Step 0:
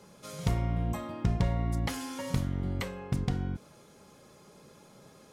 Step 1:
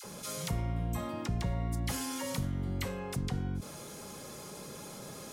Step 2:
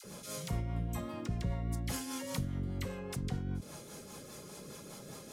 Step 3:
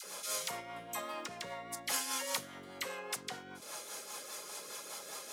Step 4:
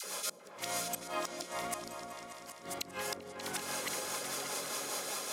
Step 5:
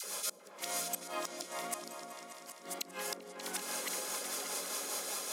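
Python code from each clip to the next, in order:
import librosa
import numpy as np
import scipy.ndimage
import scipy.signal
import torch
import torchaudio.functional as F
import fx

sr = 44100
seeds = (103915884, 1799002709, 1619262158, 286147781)

y1 = fx.high_shelf(x, sr, hz=6000.0, db=9.5)
y1 = fx.dispersion(y1, sr, late='lows', ms=43.0, hz=800.0)
y1 = fx.env_flatten(y1, sr, amount_pct=50)
y1 = F.gain(torch.from_numpy(y1), -7.0).numpy()
y2 = fx.rotary(y1, sr, hz=5.0)
y2 = F.gain(torch.from_numpy(y2), -1.0).numpy()
y3 = scipy.signal.sosfilt(scipy.signal.butter(2, 740.0, 'highpass', fs=sr, output='sos'), y2)
y3 = F.gain(torch.from_numpy(y3), 7.0).numpy()
y4 = fx.reverse_delay_fb(y3, sr, ms=558, feedback_pct=43, wet_db=-6)
y4 = fx.gate_flip(y4, sr, shuts_db=-28.0, range_db=-33)
y4 = fx.echo_opening(y4, sr, ms=195, hz=400, octaves=2, feedback_pct=70, wet_db=-3)
y4 = F.gain(torch.from_numpy(y4), 5.0).numpy()
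y5 = scipy.signal.sosfilt(scipy.signal.ellip(4, 1.0, 40, 180.0, 'highpass', fs=sr, output='sos'), y4)
y5 = fx.high_shelf(y5, sr, hz=5400.0, db=5.5)
y5 = F.gain(torch.from_numpy(y5), -2.0).numpy()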